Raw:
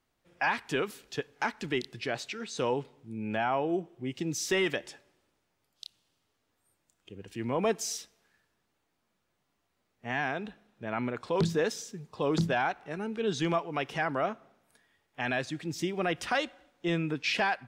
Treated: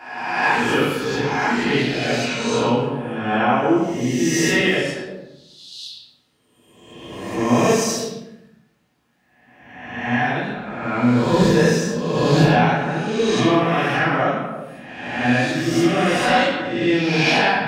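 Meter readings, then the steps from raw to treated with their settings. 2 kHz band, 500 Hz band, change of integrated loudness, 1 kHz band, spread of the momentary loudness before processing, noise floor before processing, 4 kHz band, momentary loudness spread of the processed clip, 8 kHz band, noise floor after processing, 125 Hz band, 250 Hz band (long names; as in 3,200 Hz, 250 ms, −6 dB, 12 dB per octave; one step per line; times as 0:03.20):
+13.0 dB, +12.0 dB, +13.0 dB, +13.0 dB, 13 LU, −78 dBFS, +13.0 dB, 15 LU, +11.5 dB, −62 dBFS, +15.0 dB, +15.5 dB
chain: peak hold with a rise ahead of every peak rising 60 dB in 1.25 s
high-pass filter 41 Hz
parametric band 240 Hz +5 dB 0.29 octaves
echo through a band-pass that steps 112 ms, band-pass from 3,300 Hz, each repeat −1.4 octaves, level −5 dB
rectangular room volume 180 cubic metres, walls mixed, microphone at 3.2 metres
level −2.5 dB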